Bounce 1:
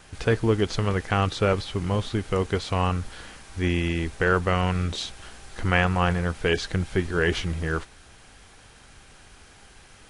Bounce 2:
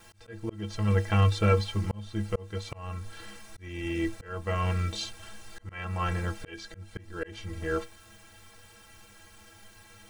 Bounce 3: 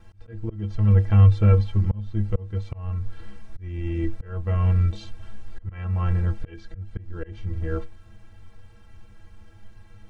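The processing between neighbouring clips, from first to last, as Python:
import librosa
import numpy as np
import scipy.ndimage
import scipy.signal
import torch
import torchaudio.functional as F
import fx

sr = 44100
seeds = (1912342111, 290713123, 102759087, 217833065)

y1 = fx.quant_dither(x, sr, seeds[0], bits=10, dither='triangular')
y1 = fx.stiff_resonator(y1, sr, f0_hz=98.0, decay_s=0.26, stiffness=0.03)
y1 = fx.auto_swell(y1, sr, attack_ms=493.0)
y1 = y1 * librosa.db_to_amplitude(5.5)
y2 = fx.riaa(y1, sr, side='playback')
y2 = y2 * librosa.db_to_amplitude(-4.0)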